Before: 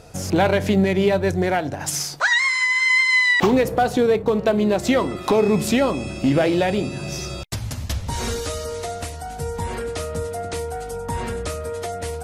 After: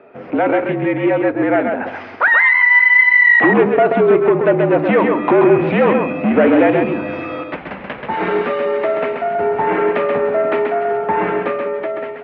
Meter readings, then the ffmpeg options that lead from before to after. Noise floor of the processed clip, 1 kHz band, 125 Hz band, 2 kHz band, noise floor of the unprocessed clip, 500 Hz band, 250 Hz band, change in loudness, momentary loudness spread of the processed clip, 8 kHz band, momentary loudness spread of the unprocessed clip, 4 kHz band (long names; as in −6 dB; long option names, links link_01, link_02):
−32 dBFS, +7.0 dB, −1.0 dB, +7.5 dB, −33 dBFS, +7.0 dB, +4.5 dB, +6.5 dB, 15 LU, below −40 dB, 13 LU, can't be measured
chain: -af "dynaudnorm=framelen=590:gausssize=5:maxgain=14dB,aresample=16000,asoftclip=type=tanh:threshold=-10.5dB,aresample=44100,aecho=1:1:132:0.596,highpass=frequency=280:width_type=q:width=0.5412,highpass=frequency=280:width_type=q:width=1.307,lowpass=frequency=2500:width_type=q:width=0.5176,lowpass=frequency=2500:width_type=q:width=0.7071,lowpass=frequency=2500:width_type=q:width=1.932,afreqshift=-51,volume=3.5dB"